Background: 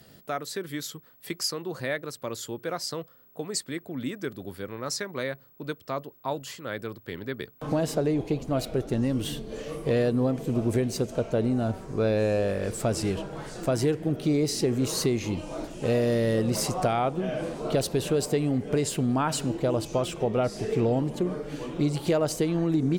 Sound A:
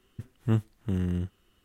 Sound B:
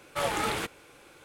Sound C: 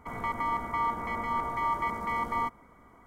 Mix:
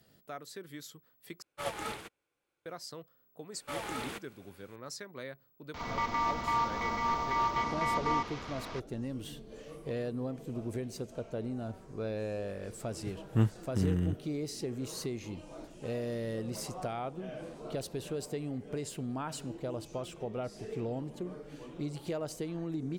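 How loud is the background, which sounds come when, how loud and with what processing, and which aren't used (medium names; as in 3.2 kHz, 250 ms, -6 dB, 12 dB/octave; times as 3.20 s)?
background -12 dB
1.42 s: replace with B -5 dB + upward expansion 2.5:1, over -43 dBFS
3.52 s: add B -9.5 dB
5.74 s: add C -0.5 dB + one-bit delta coder 32 kbps, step -37 dBFS
12.88 s: add A -1.5 dB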